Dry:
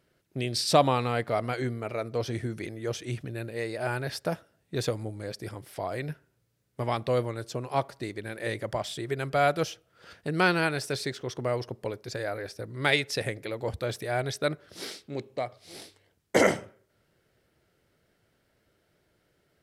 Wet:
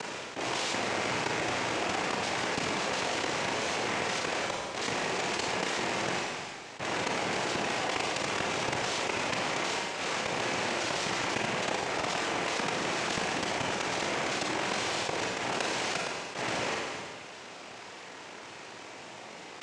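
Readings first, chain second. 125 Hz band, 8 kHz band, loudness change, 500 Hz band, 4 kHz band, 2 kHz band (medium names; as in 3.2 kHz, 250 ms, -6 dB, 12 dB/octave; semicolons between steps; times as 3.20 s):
-9.5 dB, +5.5 dB, -0.5 dB, -4.5 dB, +4.0 dB, +2.0 dB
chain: spectral levelling over time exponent 0.2; tilt EQ +2 dB/octave; band-stop 2.2 kHz, Q 6.8; level held to a coarse grid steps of 23 dB; transient shaper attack -9 dB, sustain +12 dB; power-law waveshaper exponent 2; noise-vocoded speech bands 4; distance through air 81 m; Schroeder reverb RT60 0.55 s, combs from 33 ms, DRR 3 dB; level flattener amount 70%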